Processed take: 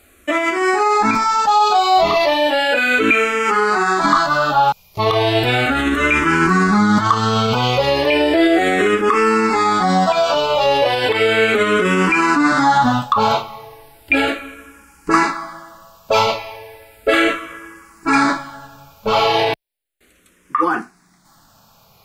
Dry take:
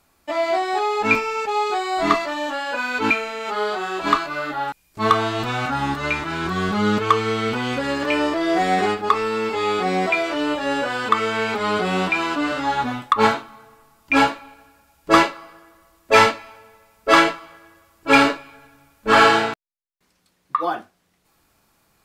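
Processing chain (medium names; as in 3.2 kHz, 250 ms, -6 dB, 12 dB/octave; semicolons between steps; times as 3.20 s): loudness maximiser +17 dB; barber-pole phaser -0.35 Hz; trim -3 dB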